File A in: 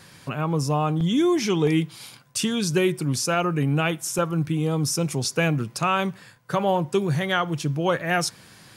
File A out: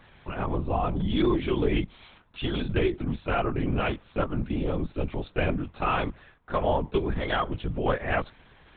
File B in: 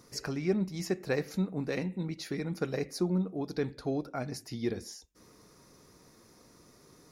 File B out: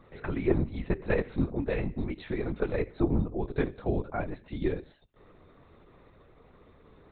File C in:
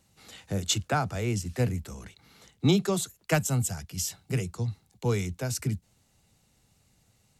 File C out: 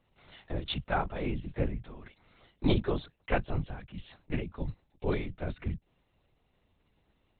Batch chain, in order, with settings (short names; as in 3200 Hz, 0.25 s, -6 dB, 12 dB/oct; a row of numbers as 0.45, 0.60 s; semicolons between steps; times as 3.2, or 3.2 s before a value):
bell 610 Hz +3.5 dB 2.6 oct; LPC vocoder at 8 kHz whisper; normalise peaks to -12 dBFS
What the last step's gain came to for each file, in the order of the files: -6.0, +1.0, -5.5 dB